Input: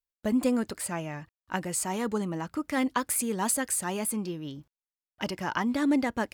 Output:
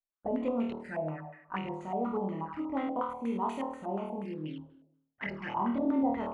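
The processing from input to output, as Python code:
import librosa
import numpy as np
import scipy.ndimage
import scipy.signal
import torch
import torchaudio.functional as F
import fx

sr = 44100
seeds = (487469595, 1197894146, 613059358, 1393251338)

y = fx.room_flutter(x, sr, wall_m=4.4, rt60_s=0.75)
y = fx.env_flanger(y, sr, rest_ms=9.5, full_db=-25.0)
y = fx.filter_held_lowpass(y, sr, hz=8.3, low_hz=670.0, high_hz=2300.0)
y = y * 10.0 ** (-7.5 / 20.0)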